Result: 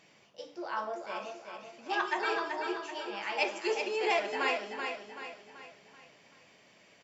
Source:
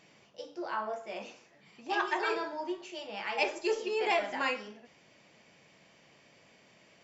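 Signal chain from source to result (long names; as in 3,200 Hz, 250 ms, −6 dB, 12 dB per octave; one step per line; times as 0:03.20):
low-shelf EQ 360 Hz −4 dB
on a send: repeating echo 382 ms, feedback 45%, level −6 dB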